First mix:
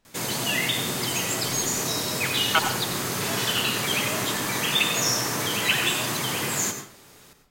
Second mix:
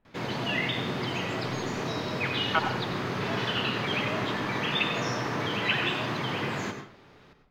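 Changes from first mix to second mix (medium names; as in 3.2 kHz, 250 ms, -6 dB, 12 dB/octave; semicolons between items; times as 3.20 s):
speech: add distance through air 310 m; master: add distance through air 290 m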